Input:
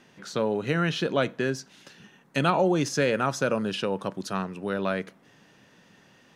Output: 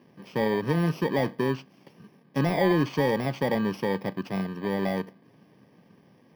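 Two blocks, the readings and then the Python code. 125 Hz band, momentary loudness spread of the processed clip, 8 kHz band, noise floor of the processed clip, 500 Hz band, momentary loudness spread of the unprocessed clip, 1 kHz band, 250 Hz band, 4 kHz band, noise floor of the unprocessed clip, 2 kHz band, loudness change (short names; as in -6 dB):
+2.0 dB, 9 LU, -12.0 dB, -59 dBFS, -0.5 dB, 9 LU, -2.0 dB, +2.0 dB, -5.0 dB, -58 dBFS, -2.5 dB, 0.0 dB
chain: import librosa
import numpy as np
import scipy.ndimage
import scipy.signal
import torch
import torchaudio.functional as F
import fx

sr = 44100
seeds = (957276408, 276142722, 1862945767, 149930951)

y = fx.bit_reversed(x, sr, seeds[0], block=32)
y = scipy.signal.sosfilt(scipy.signal.butter(2, 93.0, 'highpass', fs=sr, output='sos'), y)
y = fx.high_shelf(y, sr, hz=7700.0, db=4.0)
y = 10.0 ** (-12.5 / 20.0) * np.tanh(y / 10.0 ** (-12.5 / 20.0))
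y = fx.air_absorb(y, sr, metres=340.0)
y = F.gain(torch.from_numpy(y), 4.0).numpy()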